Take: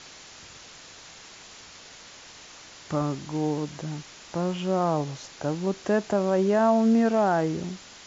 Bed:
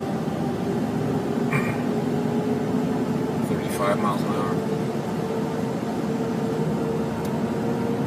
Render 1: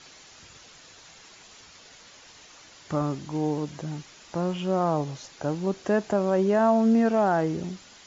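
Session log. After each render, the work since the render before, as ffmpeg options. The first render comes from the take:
-af "afftdn=nr=6:nf=-47"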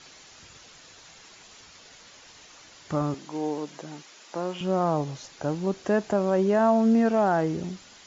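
-filter_complex "[0:a]asettb=1/sr,asplit=3[a][b][c];[a]atrim=end=3.144[d];[b]atrim=start=3.14:end=4.61,asetpts=PTS-STARTPTS,afade=t=in:d=0.004:c=qsin,afade=t=out:st=1.466:d=0.004:c=qsin,highpass=300[e];[c]atrim=start=4.606[f];[d][e]acrossfade=d=0.004:c1=hsin:c2=qsin[g];[g][f]acrossfade=d=0.004:c1=qsin:c2=hsin"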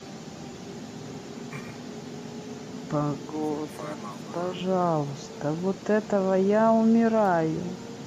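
-filter_complex "[1:a]volume=-15dB[a];[0:a][a]amix=inputs=2:normalize=0"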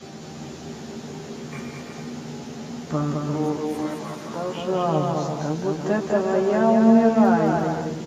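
-filter_complex "[0:a]asplit=2[a][b];[b]adelay=13,volume=-4.5dB[c];[a][c]amix=inputs=2:normalize=0,aecho=1:1:210|346.5|435.2|492.9|530.4:0.631|0.398|0.251|0.158|0.1"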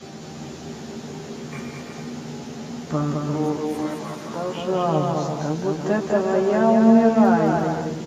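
-af "volume=1dB"

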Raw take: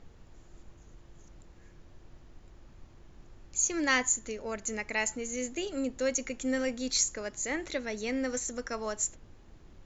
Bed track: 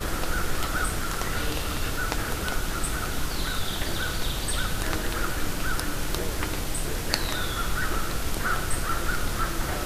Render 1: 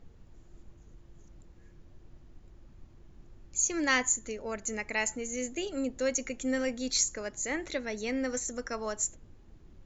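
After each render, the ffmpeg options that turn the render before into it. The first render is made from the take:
-af "afftdn=nr=6:nf=-55"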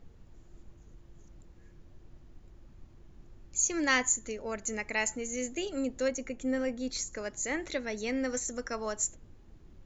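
-filter_complex "[0:a]asettb=1/sr,asplit=3[a][b][c];[a]atrim=end=6.084[d];[b]atrim=start=6.08:end=7.13,asetpts=PTS-STARTPTS,afade=t=in:d=0.004:c=qsin,afade=t=out:st=1.046:d=0.004:c=qsin,highshelf=f=2.1k:g=-9.5[e];[c]atrim=start=7.126[f];[d][e]acrossfade=d=0.004:c1=hsin:c2=qsin[g];[g][f]acrossfade=d=0.004:c1=qsin:c2=hsin"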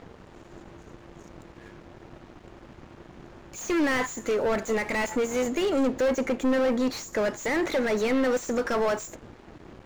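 -filter_complex "[0:a]asplit=2[a][b];[b]highpass=f=720:p=1,volume=34dB,asoftclip=type=tanh:threshold=-14.5dB[c];[a][c]amix=inputs=2:normalize=0,lowpass=f=1k:p=1,volume=-6dB,aeval=exprs='sgn(val(0))*max(abs(val(0))-0.00447,0)':c=same"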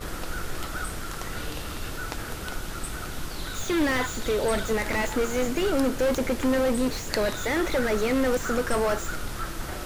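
-filter_complex "[1:a]volume=-5.5dB[a];[0:a][a]amix=inputs=2:normalize=0"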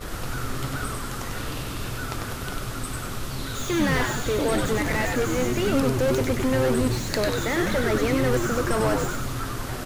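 -filter_complex "[0:a]asplit=7[a][b][c][d][e][f][g];[b]adelay=97,afreqshift=-140,volume=-3.5dB[h];[c]adelay=194,afreqshift=-280,volume=-9.7dB[i];[d]adelay=291,afreqshift=-420,volume=-15.9dB[j];[e]adelay=388,afreqshift=-560,volume=-22.1dB[k];[f]adelay=485,afreqshift=-700,volume=-28.3dB[l];[g]adelay=582,afreqshift=-840,volume=-34.5dB[m];[a][h][i][j][k][l][m]amix=inputs=7:normalize=0"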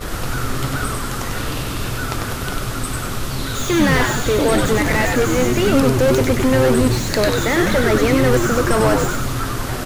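-af "volume=7.5dB,alimiter=limit=-3dB:level=0:latency=1"

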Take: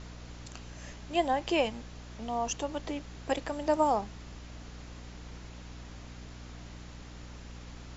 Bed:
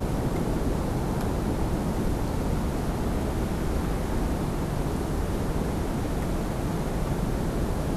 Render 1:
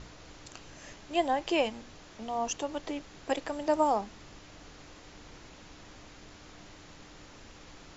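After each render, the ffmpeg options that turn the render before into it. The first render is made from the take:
-af "bandreject=f=60:t=h:w=4,bandreject=f=120:t=h:w=4,bandreject=f=180:t=h:w=4,bandreject=f=240:t=h:w=4"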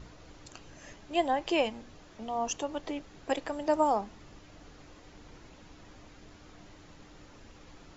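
-af "afftdn=nr=6:nf=-52"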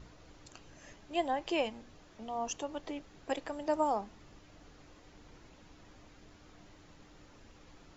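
-af "volume=-4.5dB"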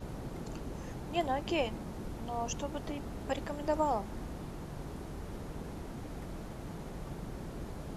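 -filter_complex "[1:a]volume=-15dB[a];[0:a][a]amix=inputs=2:normalize=0"

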